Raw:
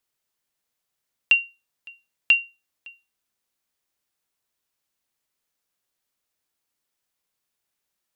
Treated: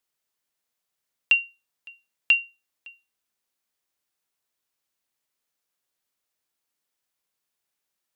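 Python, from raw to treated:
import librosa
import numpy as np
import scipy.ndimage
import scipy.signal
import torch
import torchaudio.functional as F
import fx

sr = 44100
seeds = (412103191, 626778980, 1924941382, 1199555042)

y = fx.low_shelf(x, sr, hz=160.0, db=-5.0)
y = F.gain(torch.from_numpy(y), -1.5).numpy()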